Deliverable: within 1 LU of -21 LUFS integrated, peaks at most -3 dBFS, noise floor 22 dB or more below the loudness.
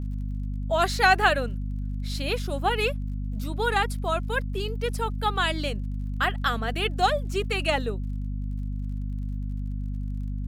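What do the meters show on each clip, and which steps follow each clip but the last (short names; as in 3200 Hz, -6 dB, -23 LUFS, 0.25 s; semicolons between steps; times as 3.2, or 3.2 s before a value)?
ticks 35/s; hum 50 Hz; harmonics up to 250 Hz; hum level -27 dBFS; loudness -27.0 LUFS; peak -6.0 dBFS; loudness target -21.0 LUFS
-> de-click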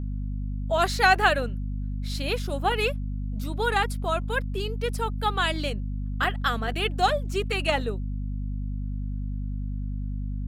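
ticks 0.57/s; hum 50 Hz; harmonics up to 250 Hz; hum level -28 dBFS
-> notches 50/100/150/200/250 Hz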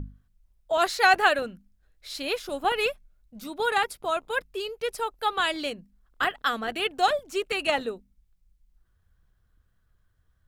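hum none; loudness -26.5 LUFS; peak -6.5 dBFS; loudness target -21.0 LUFS
-> gain +5.5 dB; limiter -3 dBFS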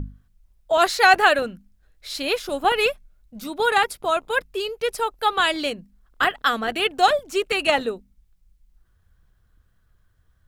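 loudness -21.0 LUFS; peak -3.0 dBFS; noise floor -63 dBFS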